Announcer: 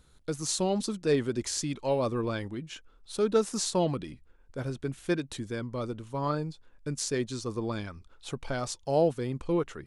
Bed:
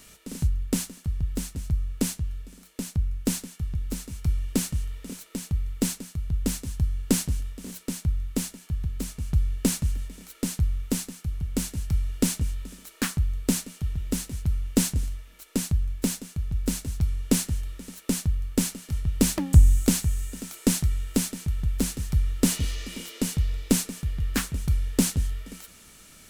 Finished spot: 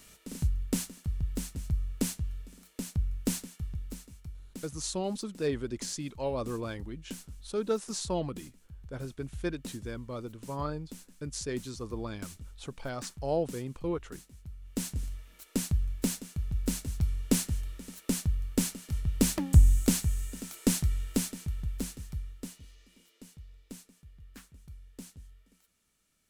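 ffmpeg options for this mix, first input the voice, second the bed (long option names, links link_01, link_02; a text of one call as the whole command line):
ffmpeg -i stem1.wav -i stem2.wav -filter_complex "[0:a]adelay=4350,volume=-5dB[link_01];[1:a]volume=11dB,afade=type=out:start_time=3.41:duration=0.89:silence=0.177828,afade=type=in:start_time=14.59:duration=0.71:silence=0.16788,afade=type=out:start_time=21.02:duration=1.53:silence=0.0944061[link_02];[link_01][link_02]amix=inputs=2:normalize=0" out.wav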